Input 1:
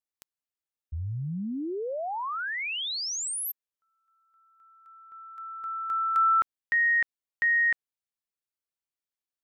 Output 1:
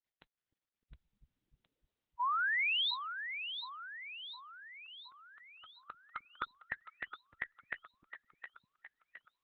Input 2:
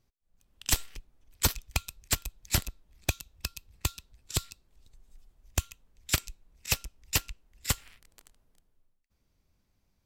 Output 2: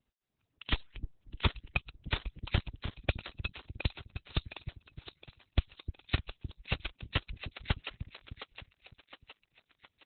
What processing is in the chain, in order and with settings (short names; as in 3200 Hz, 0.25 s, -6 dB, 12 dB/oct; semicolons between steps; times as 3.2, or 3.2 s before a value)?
median-filter separation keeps percussive; split-band echo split 340 Hz, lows 0.304 s, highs 0.714 s, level -9 dB; Opus 8 kbps 48000 Hz